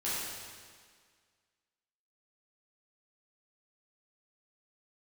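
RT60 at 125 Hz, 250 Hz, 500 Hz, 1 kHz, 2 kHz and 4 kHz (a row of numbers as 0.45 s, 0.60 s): 1.7 s, 1.8 s, 1.8 s, 1.8 s, 1.8 s, 1.7 s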